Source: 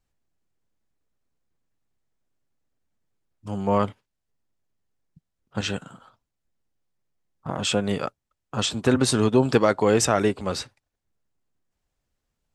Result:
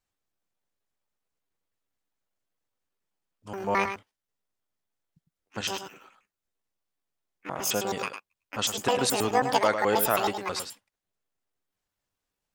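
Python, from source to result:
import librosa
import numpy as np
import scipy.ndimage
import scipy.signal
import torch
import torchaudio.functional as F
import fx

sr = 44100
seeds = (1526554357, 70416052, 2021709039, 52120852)

p1 = fx.pitch_trill(x, sr, semitones=11.5, every_ms=107)
p2 = fx.low_shelf(p1, sr, hz=350.0, db=-11.0)
p3 = p2 + fx.echo_single(p2, sr, ms=104, db=-8.0, dry=0)
y = p3 * 10.0 ** (-1.5 / 20.0)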